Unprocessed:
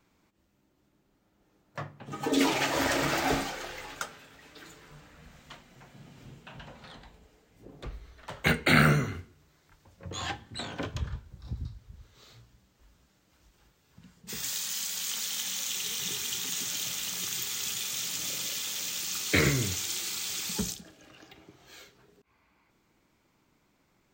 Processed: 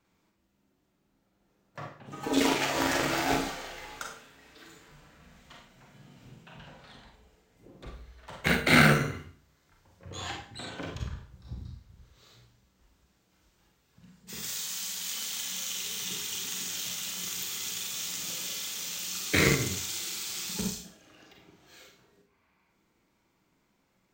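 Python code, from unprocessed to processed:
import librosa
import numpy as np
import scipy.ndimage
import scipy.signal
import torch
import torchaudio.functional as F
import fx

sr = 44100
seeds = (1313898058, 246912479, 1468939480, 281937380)

y = fx.rev_schroeder(x, sr, rt60_s=0.44, comb_ms=33, drr_db=0.5)
y = fx.cheby_harmonics(y, sr, harmonics=(4, 6, 7), levels_db=(-18, -21, -24), full_scale_db=-6.5)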